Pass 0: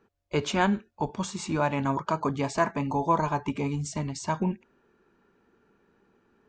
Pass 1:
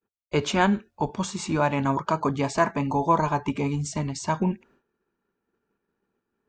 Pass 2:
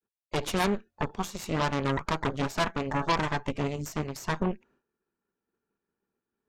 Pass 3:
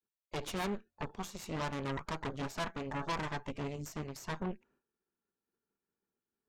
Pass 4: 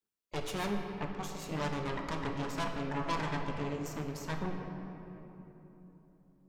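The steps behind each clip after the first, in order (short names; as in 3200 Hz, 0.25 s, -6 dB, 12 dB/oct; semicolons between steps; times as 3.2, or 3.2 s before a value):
expander -54 dBFS; gain +3 dB
added harmonics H 8 -11 dB, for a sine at -8 dBFS; gain -7.5 dB
soft clip -21.5 dBFS, distortion -14 dB; gain -7 dB
reverb RT60 3.5 s, pre-delay 7 ms, DRR 2.5 dB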